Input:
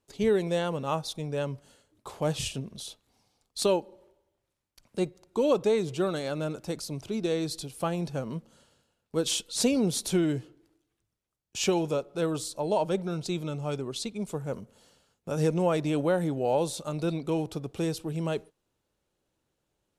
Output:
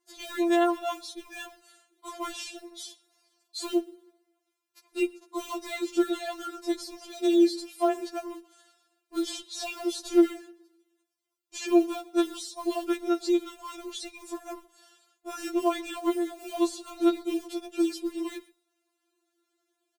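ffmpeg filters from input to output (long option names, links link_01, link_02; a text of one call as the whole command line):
ffmpeg -i in.wav -filter_complex "[0:a]asettb=1/sr,asplit=3[link_01][link_02][link_03];[link_01]atrim=end=2.314[link_04];[link_02]atrim=start=2.31:end=3.67,asetpts=PTS-STARTPTS,afade=type=in:duration=0.004:curve=qsin,afade=type=out:start_time=1.356:duration=0.004:curve=qsin,highpass=frequency=110:poles=1[link_05];[link_03]atrim=start=3.666[link_06];[link_04][link_05]acrossfade=duration=0.004:curve1=hsin:curve2=qsin[link_07];[link_07][link_06]acrossfade=duration=0.004:curve1=qsin:curve2=hsin,bandreject=frequency=422.8:width_type=h:width=4,bandreject=frequency=845.6:width_type=h:width=4,bandreject=frequency=1268.4:width_type=h:width=4,bandreject=frequency=1691.2:width_type=h:width=4,bandreject=frequency=2114:width_type=h:width=4,bandreject=frequency=2536.8:width_type=h:width=4,bandreject=frequency=2959.6:width_type=h:width=4,bandreject=frequency=3382.4:width_type=h:width=4,bandreject=frequency=3805.2:width_type=h:width=4,bandreject=frequency=4228:width_type=h:width=4,bandreject=frequency=4650.8:width_type=h:width=4,bandreject=frequency=5073.6:width_type=h:width=4,bandreject=frequency=5496.4:width_type=h:width=4,bandreject=frequency=5919.2:width_type=h:width=4,bandreject=frequency=6342:width_type=h:width=4,bandreject=frequency=6764.8:width_type=h:width=4,bandreject=frequency=7187.6:width_type=h:width=4,bandreject=frequency=7610.4:width_type=h:width=4,bandreject=frequency=8033.2:width_type=h:width=4,bandreject=frequency=8456:width_type=h:width=4,bandreject=frequency=8878.8:width_type=h:width=4,bandreject=frequency=9301.6:width_type=h:width=4,bandreject=frequency=9724.4:width_type=h:width=4,bandreject=frequency=10147.2:width_type=h:width=4,bandreject=frequency=10570:width_type=h:width=4,bandreject=frequency=10992.8:width_type=h:width=4,bandreject=frequency=11415.6:width_type=h:width=4,bandreject=frequency=11838.4:width_type=h:width=4,bandreject=frequency=12261.2:width_type=h:width=4,acrossover=split=520|2200|7400[link_08][link_09][link_10][link_11];[link_08]acompressor=threshold=-28dB:ratio=4[link_12];[link_09]acompressor=threshold=-30dB:ratio=4[link_13];[link_10]acompressor=threshold=-42dB:ratio=4[link_14];[link_11]acompressor=threshold=-54dB:ratio=4[link_15];[link_12][link_13][link_14][link_15]amix=inputs=4:normalize=0,asettb=1/sr,asplit=3[link_16][link_17][link_18];[link_16]atrim=end=6.944[link_19];[link_17]atrim=start=6.94:end=8.28,asetpts=PTS-STARTPTS,afade=type=in:duration=0.004:curve=qsin,afade=type=out:start_time=1.336:duration=0.004:curve=qsin,afreqshift=17[link_20];[link_18]atrim=start=8.276[link_21];[link_19][link_20]acrossfade=duration=0.004:curve1=hsin:curve2=qsin[link_22];[link_22][link_21]acrossfade=duration=0.004:curve1=qsin:curve2=hsin,acrossover=split=170|1700[link_23][link_24][link_25];[link_23]aeval=exprs='sgn(val(0))*max(abs(val(0))-0.00119,0)':channel_layout=same[link_26];[link_24]acrusher=bits=6:mode=log:mix=0:aa=0.000001[link_27];[link_26][link_27][link_25]amix=inputs=3:normalize=0,asplit=2[link_28][link_29];[link_29]adelay=122.4,volume=-24dB,highshelf=frequency=4000:gain=-2.76[link_30];[link_28][link_30]amix=inputs=2:normalize=0,afftfilt=real='re*4*eq(mod(b,16),0)':imag='im*4*eq(mod(b,16),0)':win_size=2048:overlap=0.75,volume=5dB" out.wav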